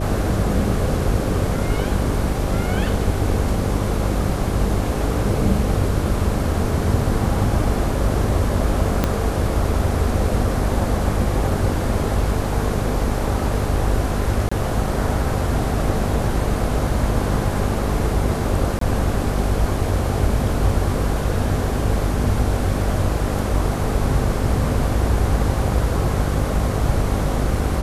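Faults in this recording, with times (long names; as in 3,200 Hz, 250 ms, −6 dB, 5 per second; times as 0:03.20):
mains buzz 50 Hz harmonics 12 −24 dBFS
0:09.04: click −4 dBFS
0:14.49–0:14.52: drop-out 25 ms
0:18.79–0:18.81: drop-out 23 ms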